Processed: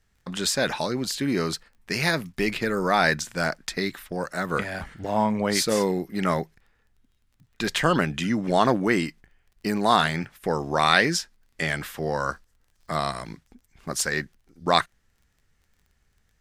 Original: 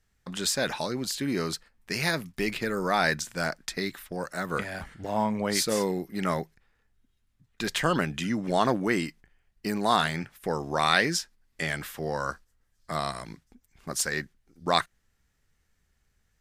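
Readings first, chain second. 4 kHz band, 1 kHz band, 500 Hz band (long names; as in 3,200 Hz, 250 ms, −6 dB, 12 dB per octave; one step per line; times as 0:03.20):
+3.0 dB, +4.0 dB, +4.0 dB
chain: high-shelf EQ 7,000 Hz −4.5 dB
surface crackle 23 per second −53 dBFS
level +4 dB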